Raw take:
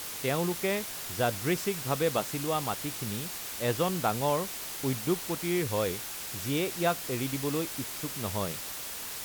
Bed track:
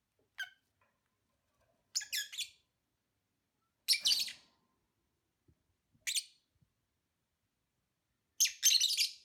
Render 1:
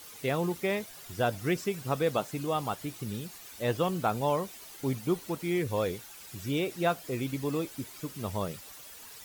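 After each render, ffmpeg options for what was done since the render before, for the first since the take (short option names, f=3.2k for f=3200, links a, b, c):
-af "afftdn=nr=12:nf=-39"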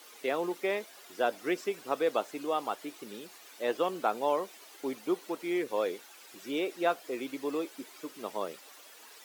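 -af "highpass=f=290:w=0.5412,highpass=f=290:w=1.3066,highshelf=f=5.6k:g=-8.5"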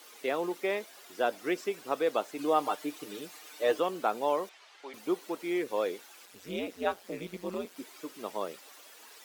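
-filter_complex "[0:a]asettb=1/sr,asplit=3[a][b][c];[a]atrim=end=2.384[d];[b]atrim=start=2.38:end=3.8,asetpts=PTS-STARTPTS,afade=t=in:d=0.004:c=qsin,afade=t=out:st=1.416:d=0.004:c=qsin,aecho=1:1:6.6:0.98,atrim=end_sample=62622[e];[c]atrim=start=3.796[f];[d][e]acrossfade=d=0.004:c1=hsin:c2=qsin[g];[g][f]acrossfade=d=0.004:c1=qsin:c2=hsin,asettb=1/sr,asplit=3[h][i][j];[h]atrim=end=4.494[k];[i]atrim=start=4.49:end=4.94,asetpts=PTS-STARTPTS,afade=t=in:d=0.004:c=qsin,afade=t=out:st=0.446:d=0.004:c=qsin,highpass=740,lowpass=4.3k[l];[j]atrim=start=4.936[m];[k][l]acrossfade=d=0.004:c1=hsin:c2=qsin[n];[n][m]acrossfade=d=0.004:c1=qsin:c2=hsin,asettb=1/sr,asplit=3[o][p][q];[o]atrim=end=6.254[r];[p]atrim=start=6.25:end=7.76,asetpts=PTS-STARTPTS,afade=t=in:d=0.004:c=qsin,afade=t=out:st=1.506:d=0.004:c=qsin,aeval=exprs='val(0)*sin(2*PI*92*n/s)':c=same[s];[q]atrim=start=7.756[t];[r][s]acrossfade=d=0.004:c1=hsin:c2=qsin[u];[u][t]acrossfade=d=0.004:c1=qsin:c2=hsin"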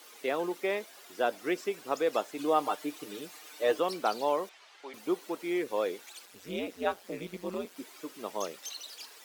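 -filter_complex "[1:a]volume=-14.5dB[a];[0:a][a]amix=inputs=2:normalize=0"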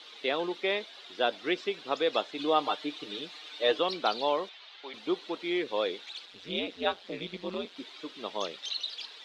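-af "lowpass=f=3.7k:t=q:w=4.3"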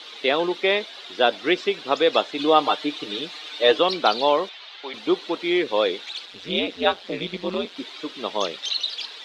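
-af "volume=9dB"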